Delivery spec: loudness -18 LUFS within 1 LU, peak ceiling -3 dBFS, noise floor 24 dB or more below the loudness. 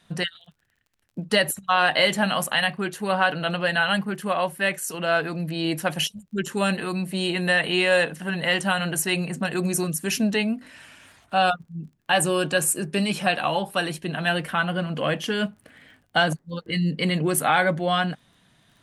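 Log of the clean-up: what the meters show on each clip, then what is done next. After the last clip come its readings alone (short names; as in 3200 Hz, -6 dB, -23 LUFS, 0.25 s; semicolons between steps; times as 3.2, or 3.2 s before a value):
ticks 29/s; loudness -23.5 LUFS; peak -6.0 dBFS; loudness target -18.0 LUFS
-> de-click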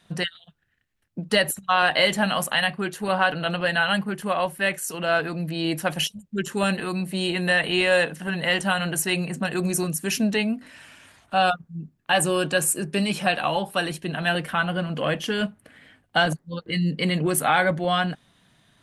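ticks 0.053/s; loudness -23.5 LUFS; peak -6.0 dBFS; loudness target -18.0 LUFS
-> gain +5.5 dB; limiter -3 dBFS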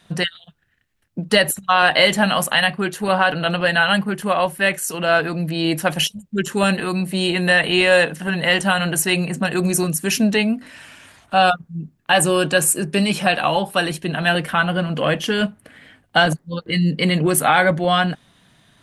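loudness -18.5 LUFS; peak -3.0 dBFS; noise floor -62 dBFS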